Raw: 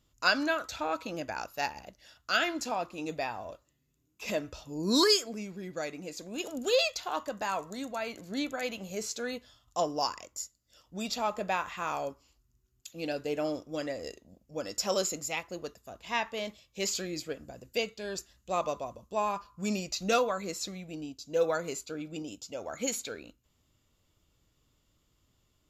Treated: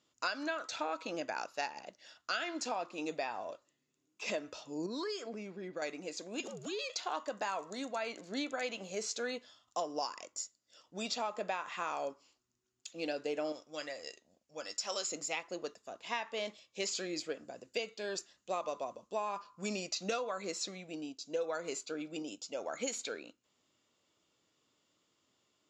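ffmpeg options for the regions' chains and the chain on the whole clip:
-filter_complex "[0:a]asettb=1/sr,asplit=3[a][b][c];[a]atrim=end=4.864[d];[b]atrim=start=4.86:end=5.82,asetpts=PTS-STARTPTS,afade=t=in:d=0.004:c=qsin,afade=t=out:st=0.956:d=0.004:c=qsin,aemphasis=mode=reproduction:type=75fm,acompressor=threshold=-35dB:ratio=5:attack=3.2:release=140:knee=1:detection=peak[e];[c]atrim=start=5.816[f];[d][e]acrossfade=d=0.004:c1=hsin:c2=qsin[g];[g][f]acrossfade=d=0.004:c1=qsin:c2=hsin,asettb=1/sr,asplit=3[h][i][j];[h]atrim=end=6.404[k];[i]atrim=start=6.4:end=6.9,asetpts=PTS-STARTPTS,afade=t=in:d=0.004:c=qsin,afade=t=out:st=0.496:d=0.004:c=qsin,acompressor=threshold=-37dB:ratio=4:attack=3.2:release=140:knee=1:detection=peak,afreqshift=-100[l];[j]atrim=start=6.896[m];[k][l]acrossfade=d=0.004:c1=hsin:c2=qsin[n];[n][m]acrossfade=d=0.004:c1=qsin:c2=hsin,asettb=1/sr,asplit=3[o][p][q];[o]atrim=end=13.524[r];[p]atrim=start=13.52:end=15.09,asetpts=PTS-STARTPTS,afade=t=in:d=0.004:c=qsin,afade=t=out:st=1.566:d=0.004:c=qsin,equalizer=f=290:w=0.48:g=-12,asplit=2[s][t];[t]adelay=13,volume=-13dB[u];[s][u]amix=inputs=2:normalize=0,atrim=end_sample=69237[v];[q]atrim=start=15.086[w];[r][v]acrossfade=d=0.004:c1=hsin:c2=qsin[x];[x][w]acrossfade=d=0.004:c1=qsin:c2=hsin,highpass=280,acompressor=threshold=-32dB:ratio=10,lowpass=f=7.6k:w=0.5412,lowpass=f=7.6k:w=1.3066"

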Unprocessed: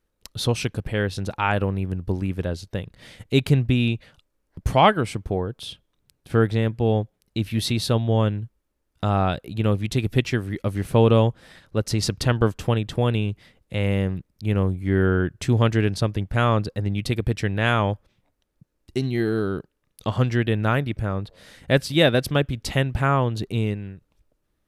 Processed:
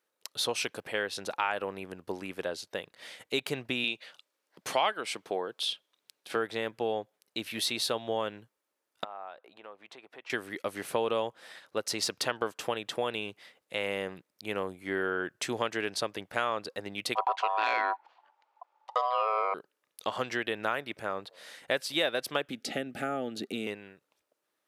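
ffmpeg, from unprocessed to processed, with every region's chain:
-filter_complex "[0:a]asettb=1/sr,asplit=3[a][b][c];[a]atrim=end=3.844[d];[b]atrim=start=3.84:end=6.36,asetpts=PTS-STARTPTS,afade=t=in:d=0.004:c=qsin,afade=t=out:st=2.516:d=0.004:c=qsin,highpass=150,equalizer=f=3.8k:t=o:w=1.7:g=5.5[e];[c]atrim=start=6.356[f];[d][e]acrossfade=d=0.004:c1=hsin:c2=qsin[g];[g][f]acrossfade=d=0.004:c1=qsin:c2=hsin,asettb=1/sr,asplit=3[h][i][j];[h]atrim=end=9.044[k];[i]atrim=start=9.04:end=10.3,asetpts=PTS-STARTPTS,afade=t=in:d=0.004:c=qsin,afade=t=out:st=1.256:d=0.004:c=qsin,bandpass=f=920:t=q:w=1.2,acompressor=threshold=-45dB:ratio=2.5:attack=3.2:release=140:knee=1:detection=peak[l];[j]atrim=start=10.296[m];[k][l]acrossfade=d=0.004:c1=hsin:c2=qsin[n];[n][m]acrossfade=d=0.004:c1=qsin:c2=hsin,asettb=1/sr,asplit=3[o][p][q];[o]atrim=end=17.154[r];[p]atrim=start=17.15:end=19.54,asetpts=PTS-STARTPTS,afade=t=in:d=0.004:c=qsin,afade=t=out:st=2.386:d=0.004:c=qsin,aeval=exprs='0.447*sin(PI/2*1.41*val(0)/0.447)':c=same,aeval=exprs='val(0)*sin(2*PI*870*n/s)':c=same,highpass=300,lowpass=3.6k[s];[q]atrim=start=19.536[t];[r][s]acrossfade=d=0.004:c1=hsin:c2=qsin[u];[u][t]acrossfade=d=0.004:c1=qsin:c2=hsin,asettb=1/sr,asplit=3[v][w][x];[v]atrim=end=22.504[y];[w]atrim=start=22.5:end=23.67,asetpts=PTS-STARTPTS,afade=t=in:d=0.004:c=qsin,afade=t=out:st=1.166:d=0.004:c=qsin,equalizer=f=240:t=o:w=1:g=14,acrossover=split=900|7000[z][aa][ab];[z]acompressor=threshold=-20dB:ratio=4[ac];[aa]acompressor=threshold=-37dB:ratio=4[ad];[ab]acompressor=threshold=-51dB:ratio=4[ae];[ac][ad][ae]amix=inputs=3:normalize=0,asuperstop=centerf=1000:order=12:qfactor=3.4[af];[x]atrim=start=23.666[ag];[y][af]acrossfade=d=0.004:c1=hsin:c2=qsin[ah];[ah][ag]acrossfade=d=0.004:c1=qsin:c2=hsin,deesser=0.45,highpass=530,acompressor=threshold=-27dB:ratio=3"

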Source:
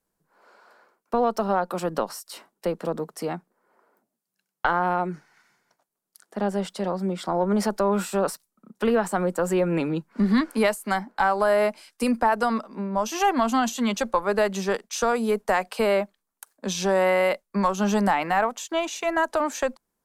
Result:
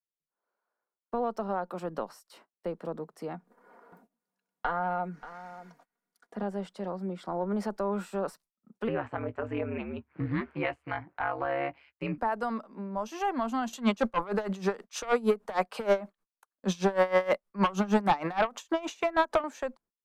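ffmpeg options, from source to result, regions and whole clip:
-filter_complex "[0:a]asettb=1/sr,asplit=3[a][b][c];[a]atrim=end=3.344[d];[b]atrim=start=3.34:end=6.43,asetpts=PTS-STARTPTS,afade=t=in:d=0.004:c=qsin,afade=t=out:st=3.086:d=0.004:c=qsin,aecho=1:1:4.2:0.52,atrim=end_sample=136269,acompressor=mode=upward:threshold=-32dB:ratio=2.5:attack=3.2:release=140:knee=2.83:detection=peak,aecho=1:1:584:0.188,atrim=end_sample=136269[e];[c]atrim=start=6.426[f];[d][e]acrossfade=d=0.004:c1=hsin:c2=qsin[g];[g][f]acrossfade=d=0.004:c1=qsin:c2=hsin,asettb=1/sr,asplit=3[h][i][j];[h]atrim=end=8.884[k];[i]atrim=start=8.88:end=12.18,asetpts=PTS-STARTPTS,afade=t=in:d=0.004:c=qsin,afade=t=out:st=3.296:d=0.004:c=qsin,lowpass=f=2.5k:t=q:w=3,aeval=exprs='val(0)*sin(2*PI*71*n/s)':c=same,asplit=2[l][m];[m]adelay=17,volume=-13dB[n];[l][n]amix=inputs=2:normalize=0,atrim=end_sample=145530[o];[j]atrim=start=12.176[p];[k][o]acrossfade=d=0.004:c1=hsin:c2=qsin[q];[q][p]acrossfade=d=0.004:c1=qsin:c2=hsin,asettb=1/sr,asplit=3[r][s][t];[r]atrim=end=13.734[u];[s]atrim=start=13.73:end=19.44,asetpts=PTS-STARTPTS,afade=t=in:d=0.004:c=qsin,afade=t=out:st=5.706:d=0.004:c=qsin,equalizer=f=1.2k:t=o:w=0.41:g=4,aeval=exprs='0.422*sin(PI/2*2.51*val(0)/0.422)':c=same,aeval=exprs='val(0)*pow(10,-20*(0.5-0.5*cos(2*PI*6.4*n/s))/20)':c=same[v];[t]atrim=start=19.436[w];[u][v]acrossfade=d=0.004:c1=hsin:c2=qsin[x];[x][w]acrossfade=d=0.004:c1=qsin:c2=hsin,highshelf=f=3.6k:g=-11.5,agate=range=-22dB:threshold=-50dB:ratio=16:detection=peak,volume=-8dB"

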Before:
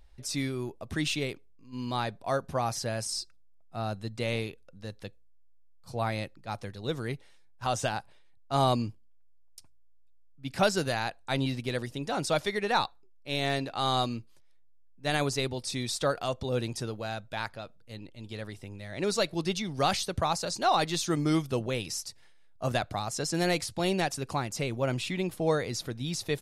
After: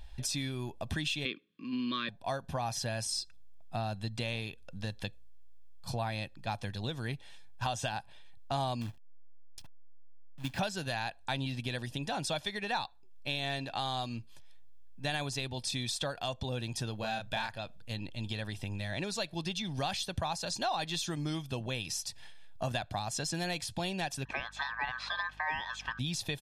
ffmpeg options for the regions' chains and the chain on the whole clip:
-filter_complex "[0:a]asettb=1/sr,asplit=3[a][b][c];[a]atrim=end=1.254[d];[b]atrim=start=1.25:end=2.09,asetpts=PTS-STARTPTS,afade=t=in:d=0.004:c=qsin,afade=t=out:st=0.836:d=0.004:c=qsin,highpass=f=190:w=0.5412,highpass=f=190:w=1.3066,equalizer=f=220:t=q:w=4:g=5,equalizer=f=320:t=q:w=4:g=7,equalizer=f=560:t=q:w=4:g=-5,equalizer=f=1.1k:t=q:w=4:g=9,equalizer=f=2.2k:t=q:w=4:g=4,equalizer=f=3.4k:t=q:w=4:g=5,lowpass=f=4k:w=0.5412,lowpass=f=4k:w=1.3066,acontrast=65,asuperstop=centerf=800:order=8:qfactor=1.5[e];[c]atrim=start=2.086[f];[d][e]acrossfade=d=0.004:c1=hsin:c2=qsin[g];[g][f]acrossfade=d=0.004:c1=qsin:c2=hsin,asettb=1/sr,asplit=3[h][i][j];[h]atrim=end=8.814[k];[i]atrim=start=8.81:end=10.59,asetpts=PTS-STARTPTS,afade=t=in:d=0.004:c=qsin,afade=t=out:st=1.776:d=0.004:c=qsin,lowpass=f=2.5k:p=1,acrusher=bits=3:mode=log:mix=0:aa=0.000001[l];[j]atrim=start=10.586[m];[k][l]acrossfade=d=0.004:c1=hsin:c2=qsin[n];[n][m]acrossfade=d=0.004:c1=qsin:c2=hsin,asettb=1/sr,asplit=3[o][p][q];[o]atrim=end=16.994[r];[p]atrim=start=16.99:end=17.58,asetpts=PTS-STARTPTS,afade=t=in:d=0.004:c=qsin,afade=t=out:st=0.586:d=0.004:c=qsin,asplit=2[s][t];[t]adelay=32,volume=-2.5dB[u];[s][u]amix=inputs=2:normalize=0,atrim=end_sample=26019,asoftclip=type=hard:threshold=-19.5dB[v];[q]atrim=start=17.576[w];[r][v]acrossfade=d=0.004:c1=hsin:c2=qsin[x];[x][w]acrossfade=d=0.004:c1=qsin:c2=hsin,asettb=1/sr,asplit=3[y][z][aa];[y]atrim=end=24.254[ab];[z]atrim=start=24.25:end=25.99,asetpts=PTS-STARTPTS,afade=t=in:d=0.004:c=qsin,afade=t=out:st=1.736:d=0.004:c=qsin,highpass=130,lowpass=2.9k,aeval=exprs='val(0)*sin(2*PI*1400*n/s)':c=same,aeval=exprs='val(0)+0.00126*(sin(2*PI*50*n/s)+sin(2*PI*2*50*n/s)/2+sin(2*PI*3*50*n/s)/3+sin(2*PI*4*50*n/s)/4+sin(2*PI*5*50*n/s)/5)':c=same[ac];[aa]atrim=start=25.986[ad];[ab][ac]acrossfade=d=0.004:c1=hsin:c2=qsin[ae];[ae][ad]acrossfade=d=0.004:c1=qsin:c2=hsin,equalizer=f=3.2k:w=2.1:g=7,acompressor=threshold=-41dB:ratio=4,aecho=1:1:1.2:0.45,volume=6dB"

